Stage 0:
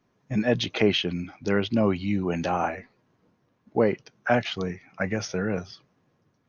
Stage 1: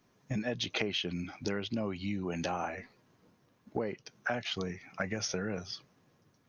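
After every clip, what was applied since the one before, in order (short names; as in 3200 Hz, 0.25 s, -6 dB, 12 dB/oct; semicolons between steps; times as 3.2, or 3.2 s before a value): compressor 6:1, threshold -32 dBFS, peak gain reduction 16 dB; high shelf 3800 Hz +9 dB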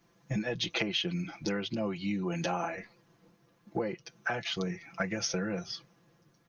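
comb 5.9 ms, depth 78%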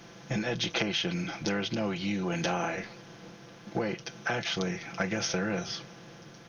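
per-bin compression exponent 0.6; gain -1 dB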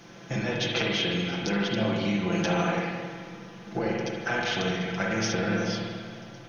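spring tank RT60 1.8 s, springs 45/54 ms, chirp 30 ms, DRR -2 dB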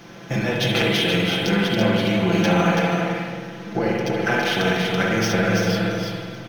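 median filter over 5 samples; echo 0.331 s -4 dB; gain +6.5 dB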